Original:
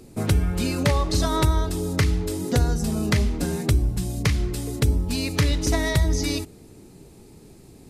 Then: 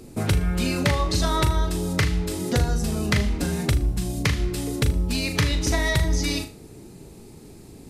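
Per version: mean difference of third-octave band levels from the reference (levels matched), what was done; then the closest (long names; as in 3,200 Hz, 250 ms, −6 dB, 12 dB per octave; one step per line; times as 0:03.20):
2.5 dB: dynamic equaliser 2,400 Hz, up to +4 dB, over −43 dBFS, Q 0.7
flutter between parallel walls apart 6.7 metres, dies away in 0.27 s
in parallel at +1 dB: downward compressor, threshold −29 dBFS, peak gain reduction 14.5 dB
on the sum: level −4 dB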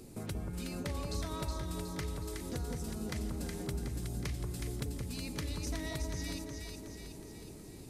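7.0 dB: high-shelf EQ 6,200 Hz +4.5 dB
downward compressor 2.5 to 1, threshold −40 dBFS, peak gain reduction 16.5 dB
delay that swaps between a low-pass and a high-pass 184 ms, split 1,200 Hz, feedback 75%, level −2 dB
level −5 dB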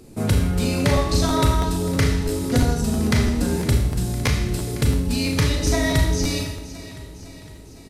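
4.0 dB: on a send: repeating echo 508 ms, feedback 56%, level −16 dB
on the sum: four-comb reverb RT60 0.78 s, combs from 26 ms, DRR 1.5 dB
regular buffer underruns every 0.33 s, samples 512, repeat, from 0:00.62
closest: first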